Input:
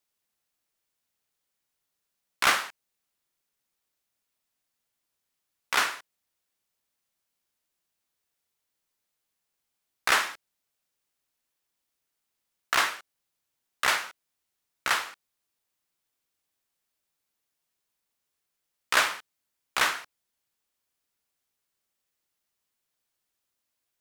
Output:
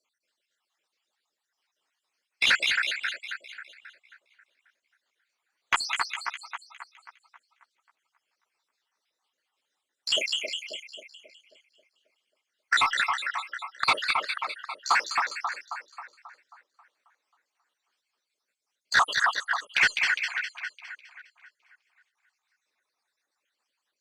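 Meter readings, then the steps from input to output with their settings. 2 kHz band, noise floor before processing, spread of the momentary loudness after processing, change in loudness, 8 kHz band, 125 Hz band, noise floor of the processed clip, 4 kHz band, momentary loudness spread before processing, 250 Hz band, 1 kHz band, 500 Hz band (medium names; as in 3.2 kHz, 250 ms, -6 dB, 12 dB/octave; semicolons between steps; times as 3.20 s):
+4.0 dB, -82 dBFS, 19 LU, 0.0 dB, -2.5 dB, no reading, -84 dBFS, +4.0 dB, 17 LU, -4.0 dB, +2.5 dB, -1.0 dB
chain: random holes in the spectrogram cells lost 76%; reverb removal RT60 1.2 s; high-pass 260 Hz 12 dB/octave; reverb removal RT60 0.65 s; in parallel at -4 dB: saturation -22.5 dBFS, distortion -12 dB; on the sum: two-band feedback delay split 1.9 kHz, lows 269 ms, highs 204 ms, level -5 dB; overdrive pedal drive 15 dB, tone 7.4 kHz, clips at -11 dBFS; distance through air 81 m; Opus 64 kbps 48 kHz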